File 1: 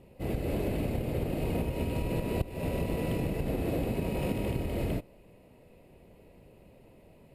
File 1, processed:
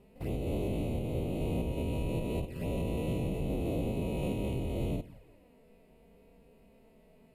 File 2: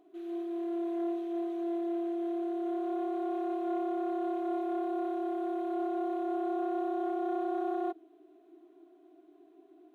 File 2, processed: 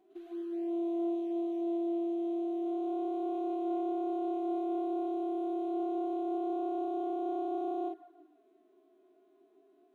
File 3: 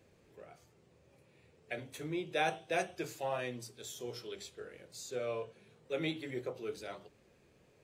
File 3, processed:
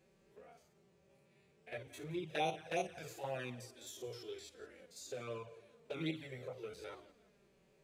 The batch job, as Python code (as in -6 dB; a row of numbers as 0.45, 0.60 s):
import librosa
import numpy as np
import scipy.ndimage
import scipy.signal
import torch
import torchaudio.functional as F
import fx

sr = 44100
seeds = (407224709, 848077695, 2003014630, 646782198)

y = fx.spec_steps(x, sr, hold_ms=50)
y = fx.echo_feedback(y, sr, ms=171, feedback_pct=42, wet_db=-18.5)
y = fx.env_flanger(y, sr, rest_ms=5.5, full_db=-30.5)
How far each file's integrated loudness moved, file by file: -2.0, -0.5, -4.5 LU